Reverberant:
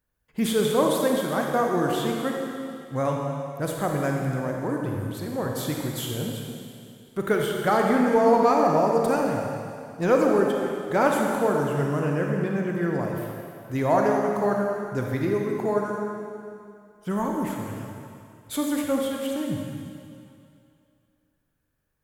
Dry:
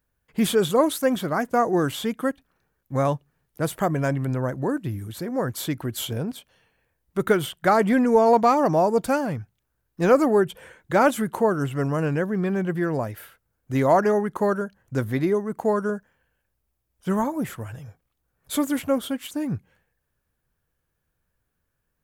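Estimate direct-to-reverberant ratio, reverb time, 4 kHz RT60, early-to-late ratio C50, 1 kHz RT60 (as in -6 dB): 0.0 dB, 2.5 s, 2.4 s, 1.0 dB, 2.5 s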